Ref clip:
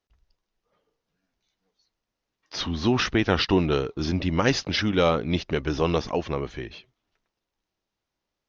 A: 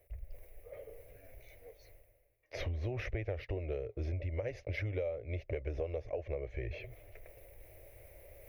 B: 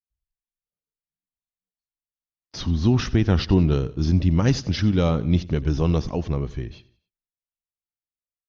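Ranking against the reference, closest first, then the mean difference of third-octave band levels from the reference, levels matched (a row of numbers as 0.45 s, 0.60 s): B, A; 5.0 dB, 8.0 dB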